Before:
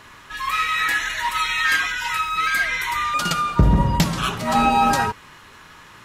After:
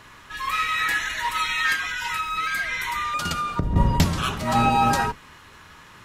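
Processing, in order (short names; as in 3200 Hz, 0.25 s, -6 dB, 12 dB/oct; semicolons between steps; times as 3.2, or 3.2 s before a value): octaver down 1 oct, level -1 dB; 1.72–3.76 compressor 5:1, threshold -20 dBFS, peak gain reduction 11.5 dB; gain -2.5 dB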